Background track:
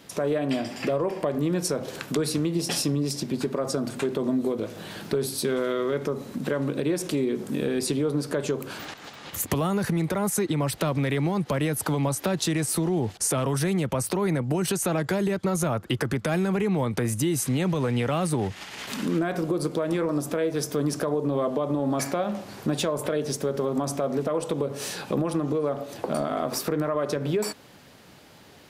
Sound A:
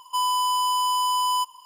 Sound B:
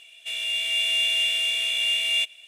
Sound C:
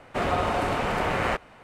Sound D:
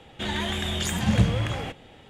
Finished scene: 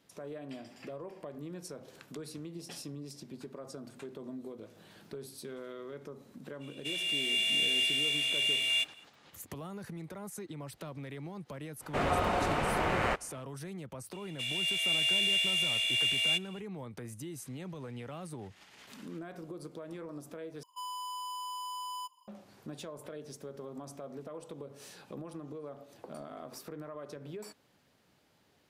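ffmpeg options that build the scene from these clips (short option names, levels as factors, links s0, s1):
-filter_complex "[2:a]asplit=2[s0][s1];[0:a]volume=0.126,asplit=2[s2][s3];[s2]atrim=end=20.634[s4];[1:a]atrim=end=1.65,asetpts=PTS-STARTPTS,volume=0.141[s5];[s3]atrim=start=22.276[s6];[s0]atrim=end=2.47,asetpts=PTS-STARTPTS,volume=0.501,afade=t=in:d=0.05,afade=t=out:st=2.42:d=0.05,adelay=6590[s7];[3:a]atrim=end=1.63,asetpts=PTS-STARTPTS,volume=0.596,afade=t=in:d=0.05,afade=t=out:st=1.58:d=0.05,adelay=11790[s8];[s1]atrim=end=2.47,asetpts=PTS-STARTPTS,volume=0.531,afade=t=in:d=0.004:c=hsin,afade=t=out:st=2.466:d=0.004:c=hsin,adelay=14130[s9];[s4][s5]acrossfade=d=0.004:c1=hsin:c2=hsin[s10];[s10][s6]acrossfade=d=0.004:c1=hsin:c2=hsin[s11];[s11][s7][s8][s9]amix=inputs=4:normalize=0"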